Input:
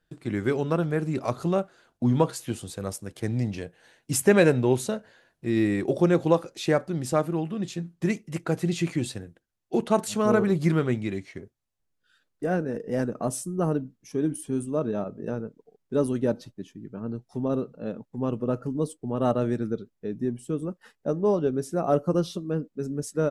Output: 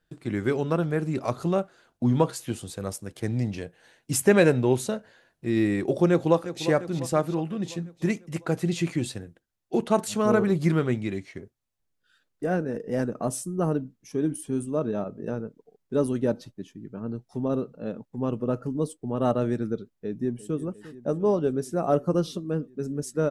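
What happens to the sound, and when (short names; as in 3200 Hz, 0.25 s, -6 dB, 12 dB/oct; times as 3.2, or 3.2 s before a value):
6.1–6.64 echo throw 0.35 s, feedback 60%, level -12 dB
19.94–20.59 echo throw 0.35 s, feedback 80%, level -16.5 dB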